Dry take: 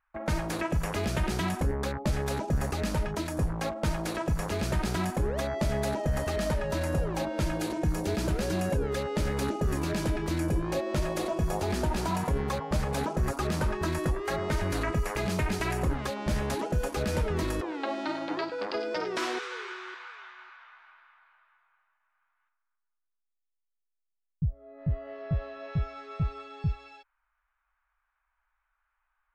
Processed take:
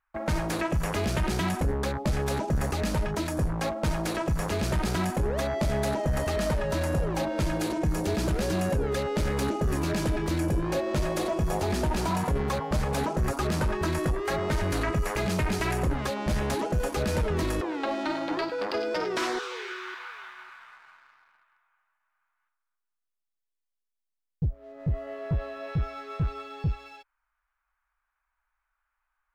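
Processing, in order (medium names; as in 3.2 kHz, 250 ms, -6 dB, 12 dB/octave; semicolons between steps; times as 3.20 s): 19.26–19.97 s: peaking EQ 3.3 kHz -> 480 Hz -12.5 dB 0.33 oct; waveshaping leveller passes 1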